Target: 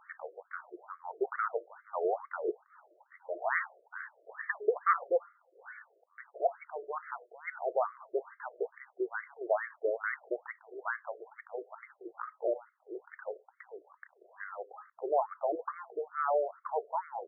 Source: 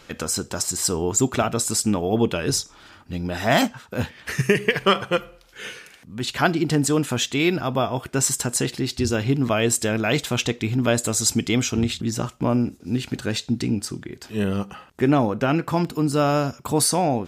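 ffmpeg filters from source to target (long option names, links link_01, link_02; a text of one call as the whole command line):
ffmpeg -i in.wav -af "highpass=120,lowpass=2500,afftfilt=real='re*between(b*sr/1024,480*pow(1600/480,0.5+0.5*sin(2*PI*2.3*pts/sr))/1.41,480*pow(1600/480,0.5+0.5*sin(2*PI*2.3*pts/sr))*1.41)':imag='im*between(b*sr/1024,480*pow(1600/480,0.5+0.5*sin(2*PI*2.3*pts/sr))/1.41,480*pow(1600/480,0.5+0.5*sin(2*PI*2.3*pts/sr))*1.41)':win_size=1024:overlap=0.75,volume=-4dB" out.wav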